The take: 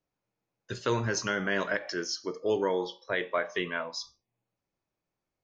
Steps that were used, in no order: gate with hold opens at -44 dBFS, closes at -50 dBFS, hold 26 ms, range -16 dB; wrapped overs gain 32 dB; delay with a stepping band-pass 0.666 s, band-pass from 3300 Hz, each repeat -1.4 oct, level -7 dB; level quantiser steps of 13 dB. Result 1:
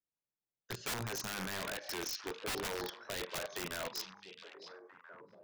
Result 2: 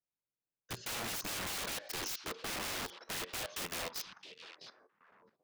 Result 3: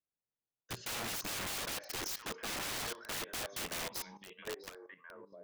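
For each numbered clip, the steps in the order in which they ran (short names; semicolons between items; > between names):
gate with hold > level quantiser > wrapped overs > delay with a stepping band-pass; wrapped overs > delay with a stepping band-pass > gate with hold > level quantiser; gate with hold > delay with a stepping band-pass > wrapped overs > level quantiser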